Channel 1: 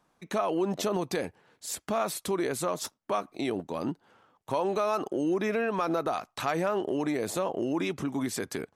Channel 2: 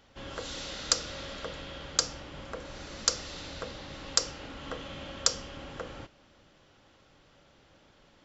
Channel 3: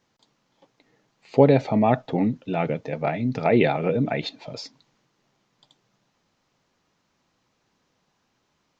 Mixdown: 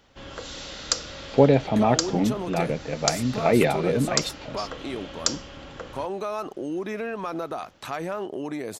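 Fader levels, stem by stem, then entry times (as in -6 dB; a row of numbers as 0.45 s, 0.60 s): -2.5 dB, +1.5 dB, -1.0 dB; 1.45 s, 0.00 s, 0.00 s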